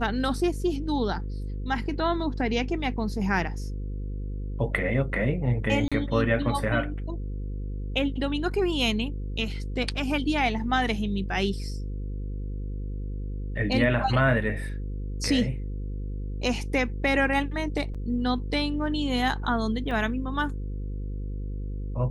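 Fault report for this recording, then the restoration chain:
mains buzz 50 Hz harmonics 10 −32 dBFS
0:05.88–0:05.92: drop-out 36 ms
0:17.94–0:17.95: drop-out 6.4 ms
0:19.91: drop-out 2.1 ms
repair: hum removal 50 Hz, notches 10
repair the gap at 0:05.88, 36 ms
repair the gap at 0:17.94, 6.4 ms
repair the gap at 0:19.91, 2.1 ms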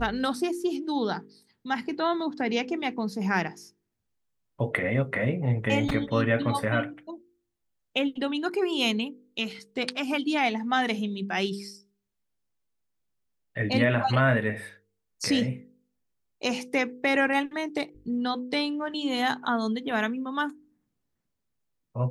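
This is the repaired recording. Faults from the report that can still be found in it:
none of them is left

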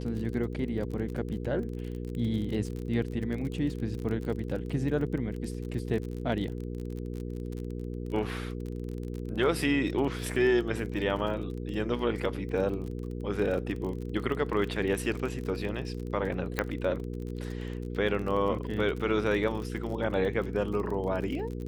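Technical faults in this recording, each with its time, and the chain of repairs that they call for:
surface crackle 33 per second −35 dBFS
mains hum 60 Hz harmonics 8 −36 dBFS
0:16.59: click −13 dBFS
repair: click removal
hum removal 60 Hz, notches 8

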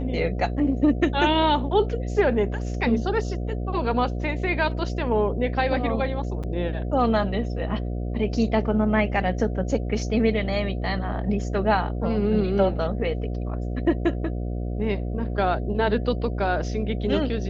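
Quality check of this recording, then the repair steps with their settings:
mains buzz 60 Hz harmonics 12 −28 dBFS
0:06.43–0:06.44: drop-out 6.4 ms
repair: hum removal 60 Hz, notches 12
repair the gap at 0:06.43, 6.4 ms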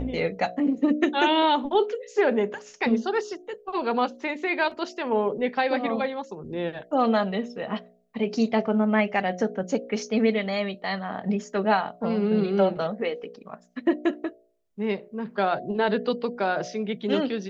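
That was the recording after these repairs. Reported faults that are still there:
none of them is left

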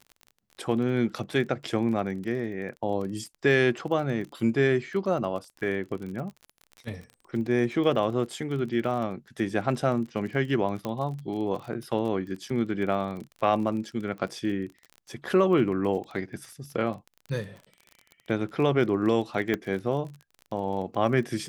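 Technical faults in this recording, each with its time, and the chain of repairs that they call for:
surface crackle 33 per second −35 dBFS
0:10.85: click −18 dBFS
0:19.54: click −14 dBFS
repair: click removal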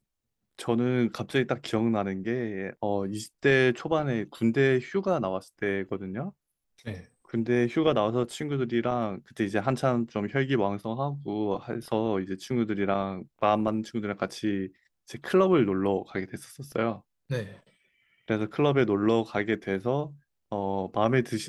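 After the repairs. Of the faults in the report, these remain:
0:19.54: click

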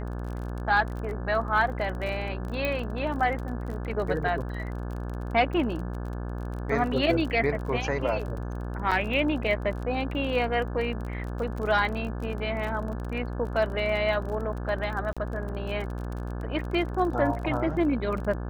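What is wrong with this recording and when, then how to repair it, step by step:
mains buzz 60 Hz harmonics 29 −33 dBFS
surface crackle 30 per second −34 dBFS
0:02.65: click −15 dBFS
0:08.91–0:08.92: drop-out 6.1 ms
0:15.13–0:15.17: drop-out 36 ms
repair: click removal
hum removal 60 Hz, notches 29
repair the gap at 0:08.91, 6.1 ms
repair the gap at 0:15.13, 36 ms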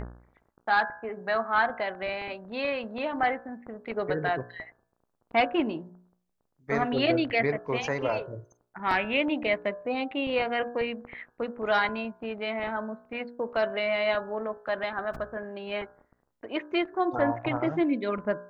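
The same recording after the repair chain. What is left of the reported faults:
none of them is left

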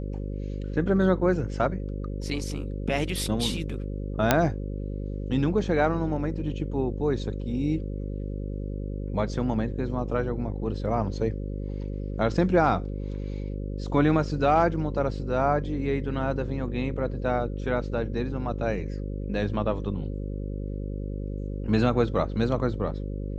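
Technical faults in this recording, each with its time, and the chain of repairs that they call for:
mains buzz 50 Hz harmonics 11 −32 dBFS
0:04.31: click −3 dBFS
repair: click removal
hum removal 50 Hz, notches 11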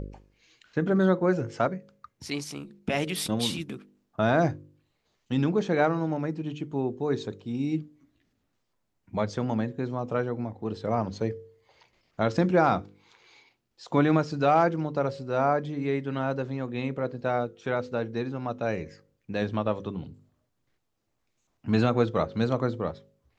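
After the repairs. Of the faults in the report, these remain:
none of them is left

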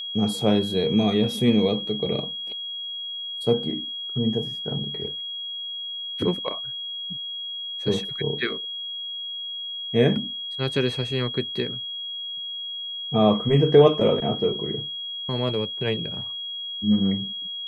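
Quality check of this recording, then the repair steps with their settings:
whistle 3,300 Hz −30 dBFS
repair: notch filter 3,300 Hz, Q 30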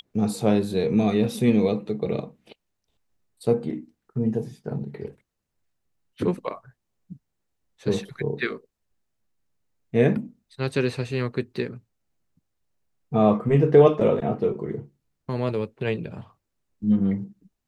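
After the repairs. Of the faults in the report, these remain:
none of them is left

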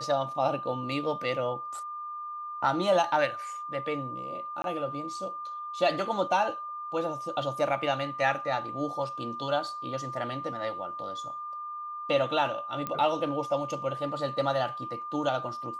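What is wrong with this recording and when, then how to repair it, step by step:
whistle 1,200 Hz −35 dBFS
0:04.62–0:04.64: drop-out 22 ms
0:12.87: click −18 dBFS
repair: click removal
notch filter 1,200 Hz, Q 30
repair the gap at 0:04.62, 22 ms

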